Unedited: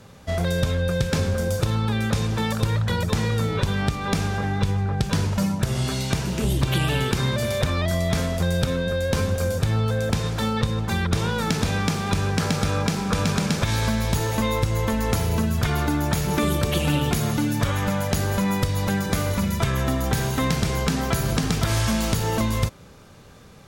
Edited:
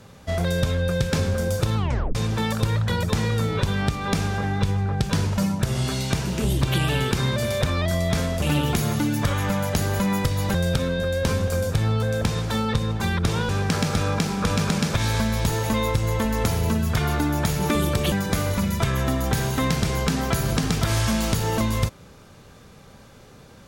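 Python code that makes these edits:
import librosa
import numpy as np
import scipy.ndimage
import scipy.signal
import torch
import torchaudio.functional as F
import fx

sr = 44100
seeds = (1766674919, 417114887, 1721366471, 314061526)

y = fx.edit(x, sr, fx.tape_stop(start_s=1.77, length_s=0.38),
    fx.cut(start_s=11.37, length_s=0.8),
    fx.move(start_s=16.8, length_s=2.12, to_s=8.42), tone=tone)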